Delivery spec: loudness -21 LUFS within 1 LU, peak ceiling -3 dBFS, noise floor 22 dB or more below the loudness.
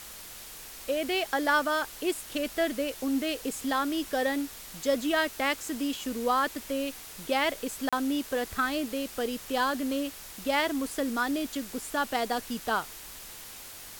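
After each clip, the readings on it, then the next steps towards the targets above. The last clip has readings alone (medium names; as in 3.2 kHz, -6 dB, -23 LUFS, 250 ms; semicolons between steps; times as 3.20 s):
dropouts 1; longest dropout 36 ms; noise floor -45 dBFS; noise floor target -52 dBFS; loudness -30.0 LUFS; peak level -13.0 dBFS; loudness target -21.0 LUFS
-> interpolate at 7.89 s, 36 ms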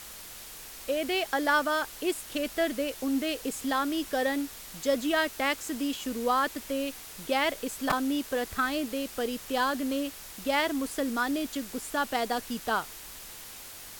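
dropouts 0; noise floor -45 dBFS; noise floor target -52 dBFS
-> noise print and reduce 7 dB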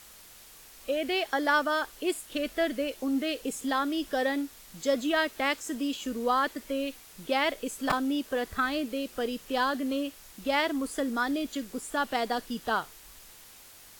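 noise floor -52 dBFS; loudness -30.0 LUFS; peak level -11.0 dBFS; loudness target -21.0 LUFS
-> trim +9 dB; peak limiter -3 dBFS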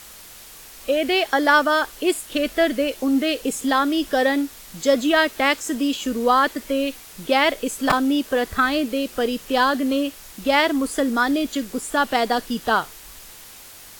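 loudness -21.0 LUFS; peak level -3.0 dBFS; noise floor -43 dBFS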